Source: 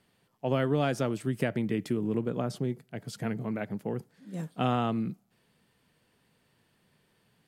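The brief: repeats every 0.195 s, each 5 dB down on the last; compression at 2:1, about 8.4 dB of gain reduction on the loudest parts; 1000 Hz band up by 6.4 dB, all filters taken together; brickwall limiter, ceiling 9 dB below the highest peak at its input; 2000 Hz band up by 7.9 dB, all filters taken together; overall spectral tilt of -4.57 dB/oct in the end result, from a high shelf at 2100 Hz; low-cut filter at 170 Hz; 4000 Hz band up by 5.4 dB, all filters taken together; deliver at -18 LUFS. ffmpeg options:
-af "highpass=170,equalizer=f=1k:t=o:g=8,equalizer=f=2k:t=o:g=8.5,highshelf=f=2.1k:g=-5.5,equalizer=f=4k:t=o:g=8.5,acompressor=threshold=-35dB:ratio=2,alimiter=level_in=1.5dB:limit=-24dB:level=0:latency=1,volume=-1.5dB,aecho=1:1:195|390|585|780|975|1170|1365:0.562|0.315|0.176|0.0988|0.0553|0.031|0.0173,volume=19dB"

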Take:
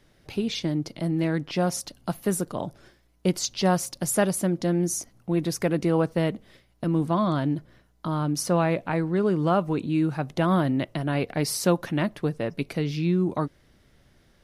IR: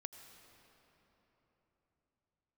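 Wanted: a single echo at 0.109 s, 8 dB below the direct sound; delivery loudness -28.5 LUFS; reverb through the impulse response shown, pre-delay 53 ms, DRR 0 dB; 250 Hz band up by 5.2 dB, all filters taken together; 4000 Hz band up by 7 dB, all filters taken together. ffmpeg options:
-filter_complex "[0:a]equalizer=f=250:t=o:g=8,equalizer=f=4k:t=o:g=9,aecho=1:1:109:0.398,asplit=2[a][b];[1:a]atrim=start_sample=2205,adelay=53[c];[b][c]afir=irnorm=-1:irlink=0,volume=4dB[d];[a][d]amix=inputs=2:normalize=0,volume=-10dB"

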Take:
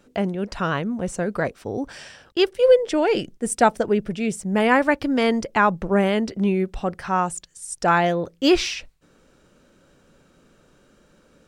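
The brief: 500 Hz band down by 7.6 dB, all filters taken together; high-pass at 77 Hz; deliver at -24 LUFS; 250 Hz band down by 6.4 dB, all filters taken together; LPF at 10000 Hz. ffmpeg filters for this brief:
-af "highpass=77,lowpass=10k,equalizer=f=250:t=o:g=-6.5,equalizer=f=500:t=o:g=-7.5,volume=2dB"

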